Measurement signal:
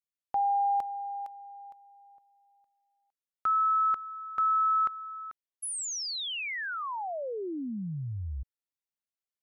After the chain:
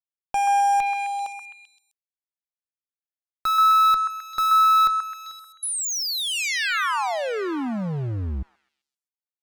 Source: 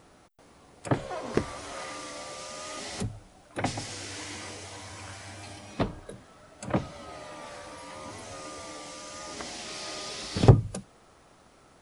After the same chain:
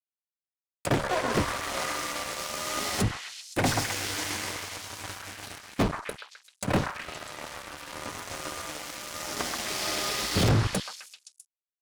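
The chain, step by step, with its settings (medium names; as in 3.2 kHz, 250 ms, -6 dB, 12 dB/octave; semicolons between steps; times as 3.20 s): fuzz box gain 32 dB, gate -40 dBFS; repeats whose band climbs or falls 130 ms, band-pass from 1.3 kHz, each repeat 0.7 oct, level -1 dB; trim -6.5 dB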